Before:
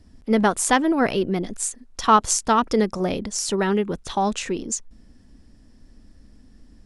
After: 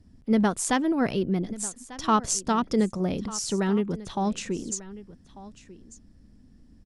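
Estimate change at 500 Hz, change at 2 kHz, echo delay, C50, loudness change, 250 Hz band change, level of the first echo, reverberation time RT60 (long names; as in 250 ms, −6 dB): −5.5 dB, −7.5 dB, 1,194 ms, no reverb audible, −4.5 dB, −1.5 dB, −18.0 dB, no reverb audible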